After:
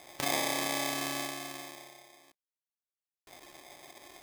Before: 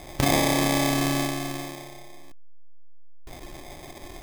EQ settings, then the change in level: HPF 730 Hz 6 dB/oct; -6.0 dB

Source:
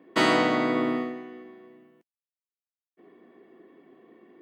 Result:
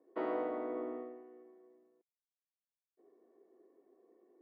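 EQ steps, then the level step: ladder band-pass 540 Hz, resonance 35%; air absorption 96 m; -1.5 dB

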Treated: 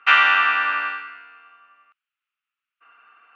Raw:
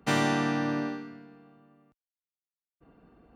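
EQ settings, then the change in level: resonant high-pass 1300 Hz, resonance Q 6.2; synth low-pass 2700 Hz, resonance Q 5.3; +4.0 dB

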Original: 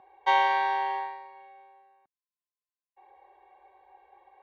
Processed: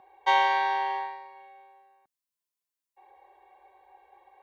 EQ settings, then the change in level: high shelf 4700 Hz +7.5 dB; 0.0 dB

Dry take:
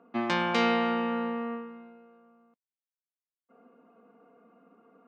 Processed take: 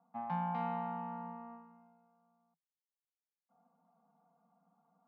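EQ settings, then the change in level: double band-pass 370 Hz, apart 2.3 oct; air absorption 110 m; 0.0 dB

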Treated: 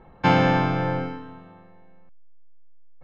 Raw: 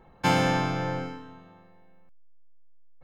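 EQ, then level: air absorption 220 m; +5.5 dB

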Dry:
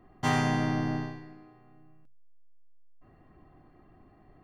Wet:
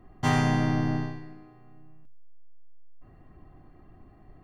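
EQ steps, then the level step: low shelf 120 Hz +8.5 dB; +1.0 dB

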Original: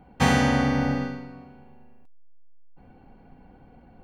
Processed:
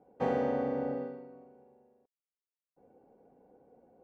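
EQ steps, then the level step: band-pass 480 Hz, Q 2.9; 0.0 dB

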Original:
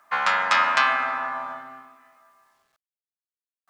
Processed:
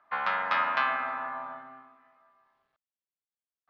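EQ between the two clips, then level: LPF 4200 Hz 24 dB/oct; high shelf 2000 Hz -8 dB; -4.5 dB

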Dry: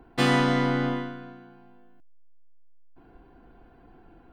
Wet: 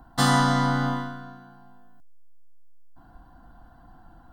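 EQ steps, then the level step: high shelf 2900 Hz +6.5 dB; fixed phaser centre 1000 Hz, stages 4; +5.0 dB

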